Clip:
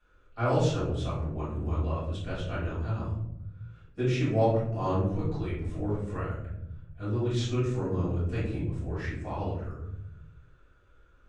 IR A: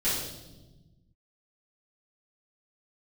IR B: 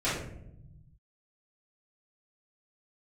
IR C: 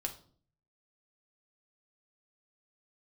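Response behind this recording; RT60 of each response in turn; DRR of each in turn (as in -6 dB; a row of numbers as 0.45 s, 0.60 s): B; 1.1 s, 0.80 s, 0.50 s; -13.0 dB, -12.5 dB, 2.5 dB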